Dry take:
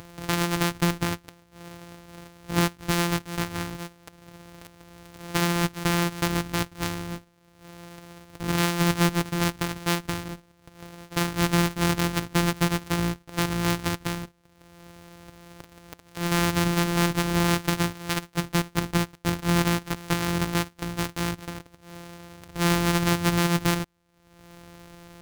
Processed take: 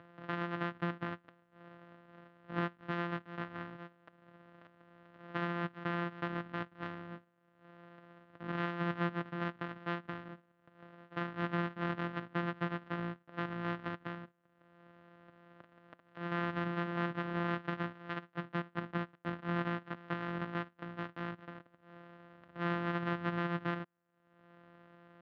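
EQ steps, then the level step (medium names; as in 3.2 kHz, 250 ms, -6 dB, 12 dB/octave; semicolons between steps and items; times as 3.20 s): cabinet simulation 230–2400 Hz, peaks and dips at 280 Hz -5 dB, 430 Hz -9 dB, 860 Hz -7 dB, 2.3 kHz -9 dB; -7.0 dB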